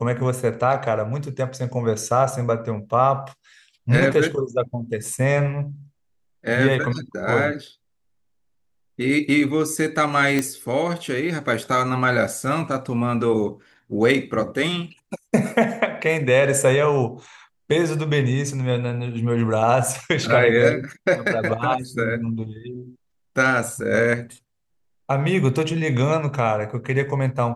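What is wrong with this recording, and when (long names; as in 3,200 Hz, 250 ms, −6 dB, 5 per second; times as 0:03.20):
0:10.39: click −8 dBFS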